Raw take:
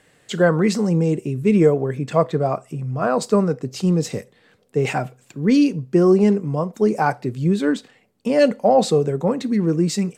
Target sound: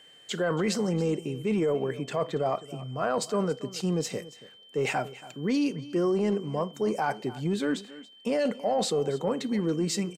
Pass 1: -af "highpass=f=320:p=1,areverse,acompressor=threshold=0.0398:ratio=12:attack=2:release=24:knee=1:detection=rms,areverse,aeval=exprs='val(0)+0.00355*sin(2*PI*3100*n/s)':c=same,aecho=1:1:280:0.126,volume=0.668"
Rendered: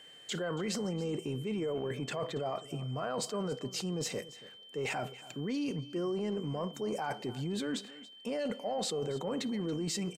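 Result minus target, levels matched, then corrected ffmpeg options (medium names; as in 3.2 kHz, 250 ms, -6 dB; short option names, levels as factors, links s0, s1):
compression: peak gain reduction +8.5 dB
-af "highpass=f=320:p=1,areverse,acompressor=threshold=0.119:ratio=12:attack=2:release=24:knee=1:detection=rms,areverse,aeval=exprs='val(0)+0.00355*sin(2*PI*3100*n/s)':c=same,aecho=1:1:280:0.126,volume=0.668"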